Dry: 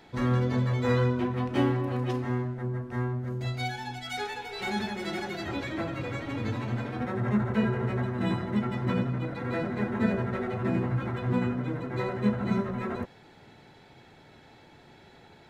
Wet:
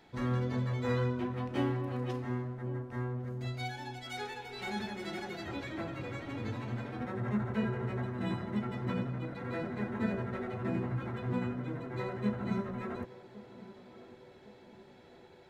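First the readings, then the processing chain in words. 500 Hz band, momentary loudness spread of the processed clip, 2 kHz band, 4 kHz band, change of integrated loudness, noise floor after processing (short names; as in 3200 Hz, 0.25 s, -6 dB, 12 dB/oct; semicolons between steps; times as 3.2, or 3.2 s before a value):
-6.0 dB, 18 LU, -6.5 dB, -6.5 dB, -6.5 dB, -56 dBFS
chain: narrowing echo 1.108 s, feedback 68%, band-pass 480 Hz, level -14.5 dB; gain -6.5 dB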